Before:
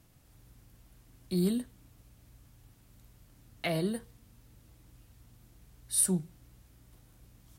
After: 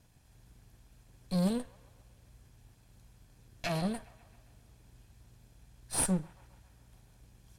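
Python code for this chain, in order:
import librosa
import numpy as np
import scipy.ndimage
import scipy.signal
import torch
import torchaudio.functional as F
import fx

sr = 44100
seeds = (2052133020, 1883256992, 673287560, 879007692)

p1 = fx.lower_of_two(x, sr, delay_ms=1.2)
p2 = scipy.signal.sosfilt(scipy.signal.butter(2, 11000.0, 'lowpass', fs=sr, output='sos'), p1)
y = p2 + fx.echo_wet_bandpass(p2, sr, ms=135, feedback_pct=62, hz=1400.0, wet_db=-18.0, dry=0)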